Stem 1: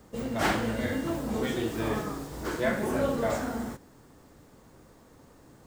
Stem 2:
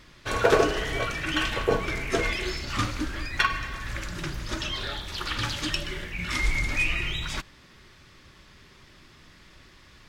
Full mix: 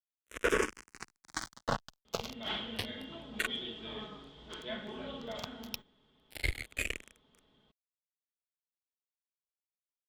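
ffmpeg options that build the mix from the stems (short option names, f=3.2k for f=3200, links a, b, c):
-filter_complex "[0:a]lowpass=f=3.3k:t=q:w=15,bandreject=f=1.7k:w=28,aecho=1:1:4.7:0.5,adelay=2050,volume=-16.5dB[a];[1:a]acrusher=bits=2:mix=0:aa=0.5,asplit=2[b][c];[c]afreqshift=-0.3[d];[b][d]amix=inputs=2:normalize=1,volume=0dB[e];[a][e]amix=inputs=2:normalize=0,alimiter=limit=-18dB:level=0:latency=1:release=59"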